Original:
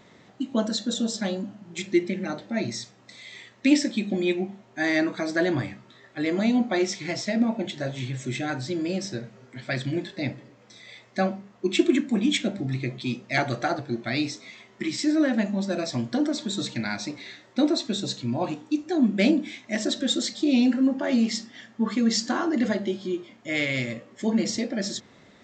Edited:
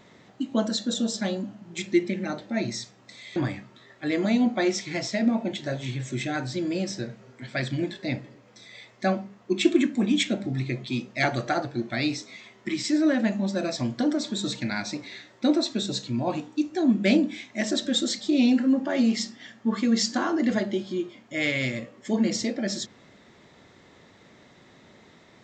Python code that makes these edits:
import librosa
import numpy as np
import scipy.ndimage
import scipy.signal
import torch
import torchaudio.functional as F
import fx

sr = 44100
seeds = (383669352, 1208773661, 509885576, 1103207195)

y = fx.edit(x, sr, fx.cut(start_s=3.36, length_s=2.14), tone=tone)